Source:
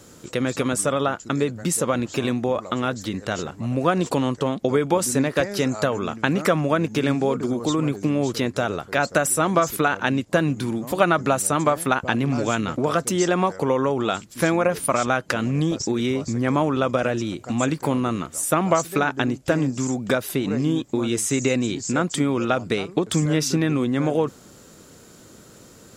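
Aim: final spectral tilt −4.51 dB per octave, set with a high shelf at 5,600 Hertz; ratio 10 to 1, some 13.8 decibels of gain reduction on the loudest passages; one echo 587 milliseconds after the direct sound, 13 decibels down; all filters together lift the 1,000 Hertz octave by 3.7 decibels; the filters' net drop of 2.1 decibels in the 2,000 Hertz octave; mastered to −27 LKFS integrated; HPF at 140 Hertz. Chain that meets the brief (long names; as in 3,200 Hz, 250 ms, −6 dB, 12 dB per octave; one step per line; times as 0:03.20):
high-pass filter 140 Hz
parametric band 1,000 Hz +7 dB
parametric band 2,000 Hz −8 dB
high-shelf EQ 5,600 Hz +8.5 dB
downward compressor 10 to 1, threshold −26 dBFS
single-tap delay 587 ms −13 dB
level +3.5 dB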